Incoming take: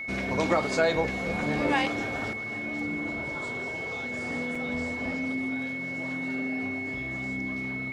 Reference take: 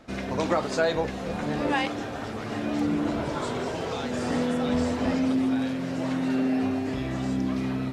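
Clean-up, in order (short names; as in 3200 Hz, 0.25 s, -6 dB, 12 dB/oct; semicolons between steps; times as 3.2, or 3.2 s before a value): notch 2200 Hz, Q 30; interpolate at 4.55, 4.1 ms; gain 0 dB, from 2.33 s +8 dB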